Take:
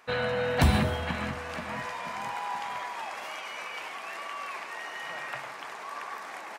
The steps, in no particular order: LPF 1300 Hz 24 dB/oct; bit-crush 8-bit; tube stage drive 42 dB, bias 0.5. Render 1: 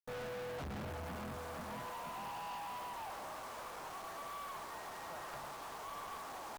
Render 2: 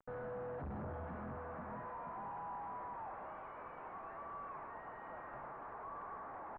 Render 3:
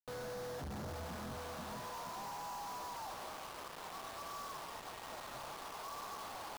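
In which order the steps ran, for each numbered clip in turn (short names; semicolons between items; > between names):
LPF > bit-crush > tube stage; bit-crush > tube stage > LPF; tube stage > LPF > bit-crush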